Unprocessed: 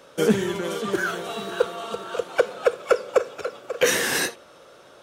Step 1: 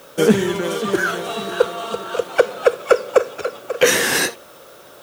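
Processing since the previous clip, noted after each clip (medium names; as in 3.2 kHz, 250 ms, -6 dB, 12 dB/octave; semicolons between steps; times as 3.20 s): added noise blue -57 dBFS; trim +5.5 dB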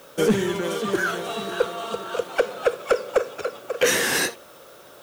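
saturation -7 dBFS, distortion -15 dB; trim -3.5 dB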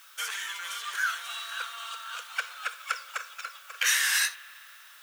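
high-pass 1.3 kHz 24 dB/octave; spring tank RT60 3.4 s, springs 54 ms, chirp 45 ms, DRR 18.5 dB; trim -1.5 dB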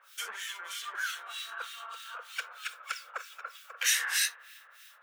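bass shelf 460 Hz +10 dB; harmonic tremolo 3.2 Hz, depth 100%, crossover 1.7 kHz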